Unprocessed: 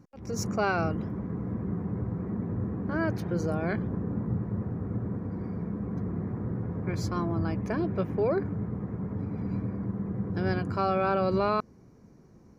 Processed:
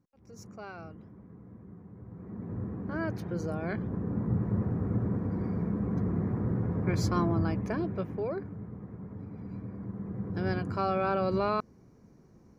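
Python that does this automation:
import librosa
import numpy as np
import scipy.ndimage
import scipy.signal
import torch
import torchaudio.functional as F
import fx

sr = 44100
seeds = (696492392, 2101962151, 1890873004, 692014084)

y = fx.gain(x, sr, db=fx.line((1.95, -17.0), (2.56, -4.5), (3.64, -4.5), (4.52, 2.5), (7.23, 2.5), (8.49, -9.0), (9.54, -9.0), (10.41, -2.5)))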